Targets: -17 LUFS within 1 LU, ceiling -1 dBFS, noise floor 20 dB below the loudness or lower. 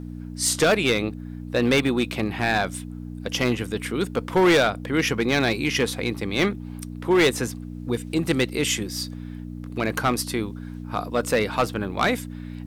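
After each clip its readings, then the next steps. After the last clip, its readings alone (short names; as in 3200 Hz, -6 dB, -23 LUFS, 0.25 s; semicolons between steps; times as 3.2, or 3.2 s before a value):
clipped 1.0%; flat tops at -13.5 dBFS; hum 60 Hz; harmonics up to 300 Hz; hum level -33 dBFS; loudness -23.5 LUFS; peak -13.5 dBFS; loudness target -17.0 LUFS
-> clip repair -13.5 dBFS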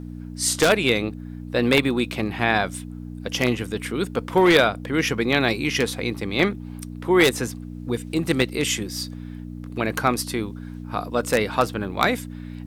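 clipped 0.0%; hum 60 Hz; harmonics up to 300 Hz; hum level -32 dBFS
-> de-hum 60 Hz, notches 5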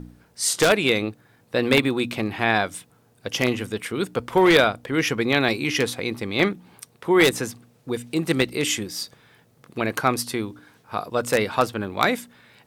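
hum none; loudness -22.5 LUFS; peak -3.5 dBFS; loudness target -17.0 LUFS
-> gain +5.5 dB; limiter -1 dBFS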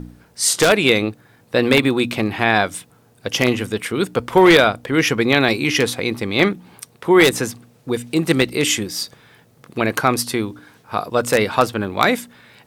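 loudness -17.5 LUFS; peak -1.0 dBFS; noise floor -54 dBFS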